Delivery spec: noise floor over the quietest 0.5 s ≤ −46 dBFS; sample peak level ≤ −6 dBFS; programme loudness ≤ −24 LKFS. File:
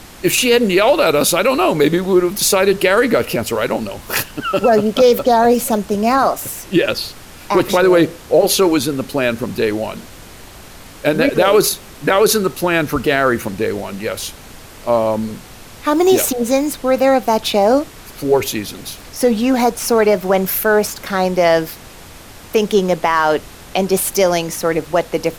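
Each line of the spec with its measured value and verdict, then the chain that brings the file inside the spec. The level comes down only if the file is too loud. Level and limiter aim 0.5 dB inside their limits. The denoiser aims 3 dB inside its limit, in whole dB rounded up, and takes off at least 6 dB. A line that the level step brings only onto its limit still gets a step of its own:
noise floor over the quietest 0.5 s −37 dBFS: out of spec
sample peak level −3.0 dBFS: out of spec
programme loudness −15.5 LKFS: out of spec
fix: broadband denoise 6 dB, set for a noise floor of −37 dBFS
level −9 dB

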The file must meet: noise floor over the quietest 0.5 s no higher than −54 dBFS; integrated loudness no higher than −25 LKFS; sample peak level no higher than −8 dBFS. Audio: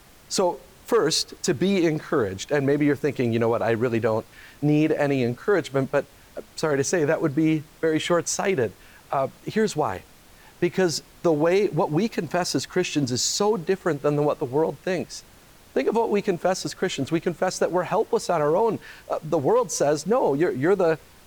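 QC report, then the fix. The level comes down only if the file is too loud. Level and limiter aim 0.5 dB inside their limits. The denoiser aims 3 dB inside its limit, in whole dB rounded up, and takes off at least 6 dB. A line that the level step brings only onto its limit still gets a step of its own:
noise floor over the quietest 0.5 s −51 dBFS: out of spec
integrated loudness −23.5 LKFS: out of spec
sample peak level −11.5 dBFS: in spec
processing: broadband denoise 6 dB, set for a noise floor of −51 dBFS
level −2 dB

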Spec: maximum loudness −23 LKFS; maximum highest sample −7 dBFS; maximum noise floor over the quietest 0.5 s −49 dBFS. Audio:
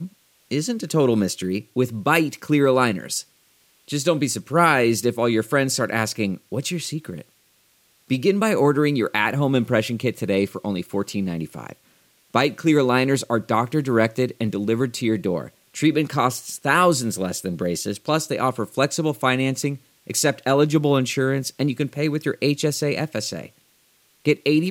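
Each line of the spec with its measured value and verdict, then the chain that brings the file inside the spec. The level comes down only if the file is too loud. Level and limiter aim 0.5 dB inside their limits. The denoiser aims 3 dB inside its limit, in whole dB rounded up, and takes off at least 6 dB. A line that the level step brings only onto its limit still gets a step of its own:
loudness −21.5 LKFS: out of spec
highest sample −3.0 dBFS: out of spec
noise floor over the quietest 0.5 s −61 dBFS: in spec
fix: level −2 dB
brickwall limiter −7.5 dBFS

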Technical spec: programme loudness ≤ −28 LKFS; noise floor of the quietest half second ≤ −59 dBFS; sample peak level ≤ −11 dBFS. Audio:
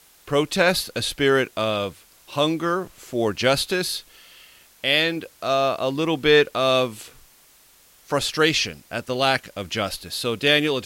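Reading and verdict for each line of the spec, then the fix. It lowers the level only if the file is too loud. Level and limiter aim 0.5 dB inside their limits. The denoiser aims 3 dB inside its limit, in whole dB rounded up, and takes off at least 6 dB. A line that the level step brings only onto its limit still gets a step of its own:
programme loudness −22.0 LKFS: out of spec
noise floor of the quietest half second −54 dBFS: out of spec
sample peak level −5.0 dBFS: out of spec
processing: level −6.5 dB

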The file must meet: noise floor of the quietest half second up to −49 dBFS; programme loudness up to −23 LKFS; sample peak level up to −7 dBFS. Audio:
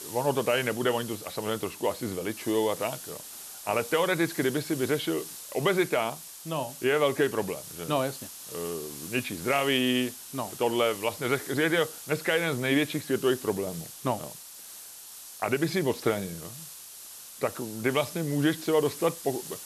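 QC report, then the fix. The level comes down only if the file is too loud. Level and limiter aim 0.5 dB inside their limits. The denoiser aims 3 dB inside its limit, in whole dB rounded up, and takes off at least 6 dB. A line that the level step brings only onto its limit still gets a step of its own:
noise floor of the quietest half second −45 dBFS: out of spec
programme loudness −28.5 LKFS: in spec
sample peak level −12.5 dBFS: in spec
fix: broadband denoise 7 dB, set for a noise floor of −45 dBFS

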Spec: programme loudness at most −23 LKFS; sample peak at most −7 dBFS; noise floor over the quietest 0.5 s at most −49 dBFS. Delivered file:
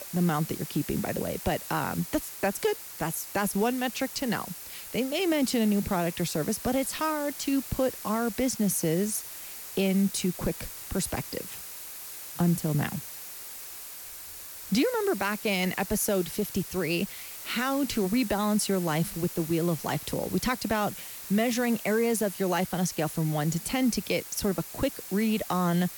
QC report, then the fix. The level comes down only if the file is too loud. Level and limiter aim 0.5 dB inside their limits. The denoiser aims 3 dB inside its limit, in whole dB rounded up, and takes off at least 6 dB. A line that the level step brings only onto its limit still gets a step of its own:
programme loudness −28.5 LKFS: in spec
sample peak −14.5 dBFS: in spec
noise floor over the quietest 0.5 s −42 dBFS: out of spec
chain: broadband denoise 10 dB, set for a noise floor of −42 dBFS

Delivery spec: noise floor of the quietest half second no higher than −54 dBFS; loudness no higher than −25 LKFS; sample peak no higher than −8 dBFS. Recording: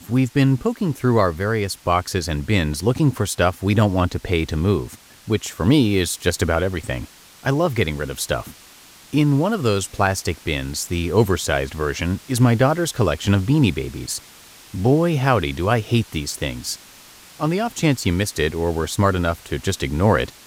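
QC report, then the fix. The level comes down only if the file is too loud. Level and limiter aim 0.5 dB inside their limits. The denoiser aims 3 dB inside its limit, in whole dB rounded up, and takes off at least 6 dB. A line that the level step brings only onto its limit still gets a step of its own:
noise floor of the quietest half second −46 dBFS: out of spec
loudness −20.5 LKFS: out of spec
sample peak −4.5 dBFS: out of spec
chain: broadband denoise 6 dB, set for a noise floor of −46 dBFS
level −5 dB

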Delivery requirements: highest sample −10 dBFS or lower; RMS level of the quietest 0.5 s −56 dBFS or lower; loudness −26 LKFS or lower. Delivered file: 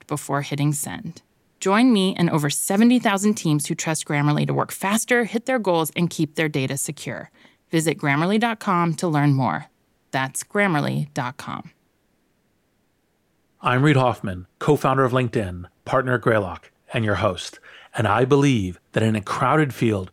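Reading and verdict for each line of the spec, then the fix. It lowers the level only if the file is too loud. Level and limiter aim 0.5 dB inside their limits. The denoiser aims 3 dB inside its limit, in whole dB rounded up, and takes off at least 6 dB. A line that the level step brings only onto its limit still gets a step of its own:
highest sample −5.5 dBFS: out of spec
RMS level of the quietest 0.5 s −67 dBFS: in spec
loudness −21.5 LKFS: out of spec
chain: level −5 dB

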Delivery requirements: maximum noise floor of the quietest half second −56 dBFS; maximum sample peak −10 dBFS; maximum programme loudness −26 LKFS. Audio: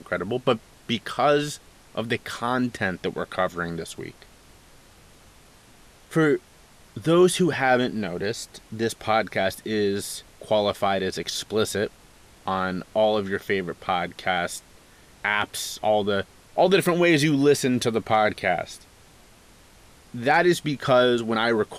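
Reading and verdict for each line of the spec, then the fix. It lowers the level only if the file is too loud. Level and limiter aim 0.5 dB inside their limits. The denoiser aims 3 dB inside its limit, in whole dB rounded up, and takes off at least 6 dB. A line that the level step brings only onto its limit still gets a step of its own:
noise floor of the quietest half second −52 dBFS: out of spec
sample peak −8.0 dBFS: out of spec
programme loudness −24.0 LKFS: out of spec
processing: broadband denoise 6 dB, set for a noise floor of −52 dBFS
level −2.5 dB

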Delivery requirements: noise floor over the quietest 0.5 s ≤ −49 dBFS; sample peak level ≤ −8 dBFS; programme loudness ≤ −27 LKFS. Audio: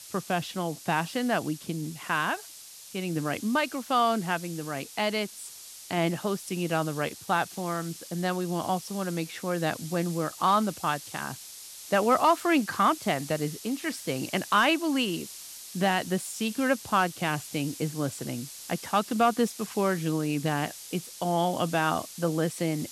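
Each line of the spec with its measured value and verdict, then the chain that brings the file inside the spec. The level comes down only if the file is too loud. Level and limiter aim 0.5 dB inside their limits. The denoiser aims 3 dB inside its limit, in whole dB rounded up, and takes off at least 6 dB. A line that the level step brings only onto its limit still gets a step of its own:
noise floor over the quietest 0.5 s −47 dBFS: out of spec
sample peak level −12.0 dBFS: in spec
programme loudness −28.5 LKFS: in spec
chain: broadband denoise 6 dB, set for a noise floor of −47 dBFS

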